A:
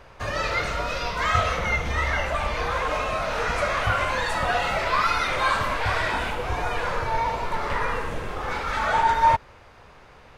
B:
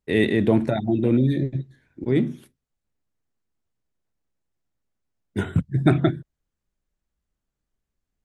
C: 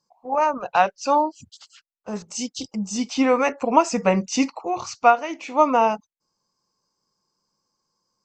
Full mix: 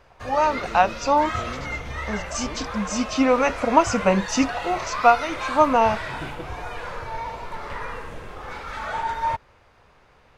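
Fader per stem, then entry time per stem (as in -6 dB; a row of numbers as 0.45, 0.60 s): -6.5, -19.5, 0.0 dB; 0.00, 0.35, 0.00 s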